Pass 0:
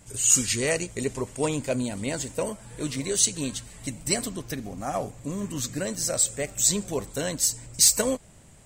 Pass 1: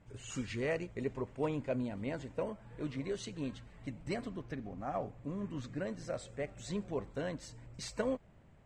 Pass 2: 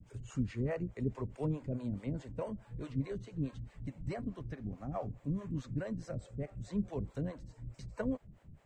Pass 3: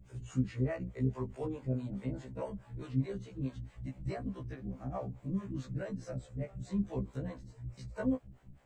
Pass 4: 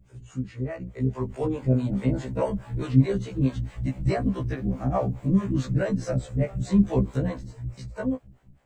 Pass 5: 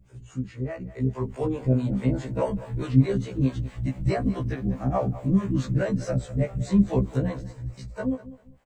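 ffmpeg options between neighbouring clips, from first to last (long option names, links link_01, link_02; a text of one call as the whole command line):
ffmpeg -i in.wav -af "lowpass=2100,volume=-8dB" out.wav
ffmpeg -i in.wav -filter_complex "[0:a]bass=frequency=250:gain=10,treble=frequency=4000:gain=4,acrossover=split=330|550|1700[link_01][link_02][link_03][link_04];[link_04]acompressor=threshold=-58dB:ratio=4[link_05];[link_01][link_02][link_03][link_05]amix=inputs=4:normalize=0,acrossover=split=420[link_06][link_07];[link_06]aeval=exprs='val(0)*(1-1/2+1/2*cos(2*PI*4.7*n/s))':channel_layout=same[link_08];[link_07]aeval=exprs='val(0)*(1-1/2-1/2*cos(2*PI*4.7*n/s))':channel_layout=same[link_09];[link_08][link_09]amix=inputs=2:normalize=0,volume=1dB" out.wav
ffmpeg -i in.wav -af "afftfilt=real='re*1.73*eq(mod(b,3),0)':imag='im*1.73*eq(mod(b,3),0)':win_size=2048:overlap=0.75,volume=3dB" out.wav
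ffmpeg -i in.wav -af "dynaudnorm=framelen=290:gausssize=9:maxgain=14dB" out.wav
ffmpeg -i in.wav -af "aecho=1:1:198|396:0.15|0.0359" out.wav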